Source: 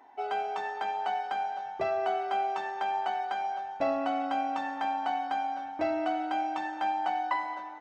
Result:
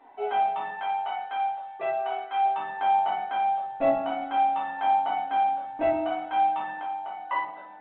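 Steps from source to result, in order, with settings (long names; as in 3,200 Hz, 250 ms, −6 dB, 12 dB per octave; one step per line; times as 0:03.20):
reverb reduction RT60 1.4 s
0:00.68–0:02.42: high-pass filter 920 Hz 6 dB per octave
0:06.76–0:07.30: downward compressor 10 to 1, threshold −40 dBFS, peak gain reduction 13 dB
high-shelf EQ 3,100 Hz −3 dB
rectangular room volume 110 cubic metres, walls mixed, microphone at 1.7 metres
level −2 dB
mu-law 64 kbit/s 8,000 Hz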